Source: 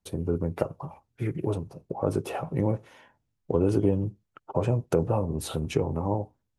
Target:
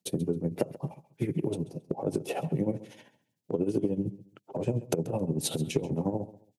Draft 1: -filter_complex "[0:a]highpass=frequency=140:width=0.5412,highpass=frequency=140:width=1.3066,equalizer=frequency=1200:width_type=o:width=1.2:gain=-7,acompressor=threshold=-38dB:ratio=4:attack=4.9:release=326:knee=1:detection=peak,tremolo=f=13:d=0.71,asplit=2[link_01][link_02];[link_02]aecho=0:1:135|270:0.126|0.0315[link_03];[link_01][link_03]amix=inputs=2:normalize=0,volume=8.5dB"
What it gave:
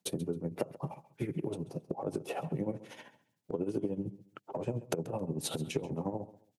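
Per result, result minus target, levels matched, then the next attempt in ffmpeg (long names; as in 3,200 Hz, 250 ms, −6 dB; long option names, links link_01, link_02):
downward compressor: peak gain reduction +7 dB; 1,000 Hz band +3.5 dB
-filter_complex "[0:a]highpass=frequency=140:width=0.5412,highpass=frequency=140:width=1.3066,equalizer=frequency=1200:width_type=o:width=1.2:gain=-7,acompressor=threshold=-30dB:ratio=4:attack=4.9:release=326:knee=1:detection=peak,tremolo=f=13:d=0.71,asplit=2[link_01][link_02];[link_02]aecho=0:1:135|270:0.126|0.0315[link_03];[link_01][link_03]amix=inputs=2:normalize=0,volume=8.5dB"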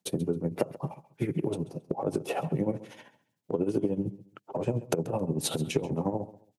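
1,000 Hz band +3.5 dB
-filter_complex "[0:a]highpass=frequency=140:width=0.5412,highpass=frequency=140:width=1.3066,equalizer=frequency=1200:width_type=o:width=1.2:gain=-16.5,acompressor=threshold=-30dB:ratio=4:attack=4.9:release=326:knee=1:detection=peak,tremolo=f=13:d=0.71,asplit=2[link_01][link_02];[link_02]aecho=0:1:135|270:0.126|0.0315[link_03];[link_01][link_03]amix=inputs=2:normalize=0,volume=8.5dB"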